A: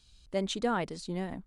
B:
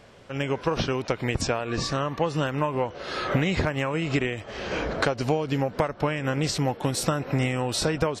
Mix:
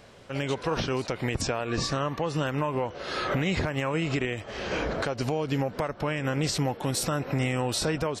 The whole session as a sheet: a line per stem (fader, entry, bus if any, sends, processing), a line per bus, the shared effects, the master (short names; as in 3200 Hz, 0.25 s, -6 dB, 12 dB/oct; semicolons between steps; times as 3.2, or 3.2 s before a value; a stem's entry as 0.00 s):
+1.5 dB, 0.00 s, no send, HPF 990 Hz; level quantiser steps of 10 dB
-0.5 dB, 0.00 s, no send, high shelf 11000 Hz +5.5 dB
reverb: off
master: limiter -18 dBFS, peak gain reduction 7 dB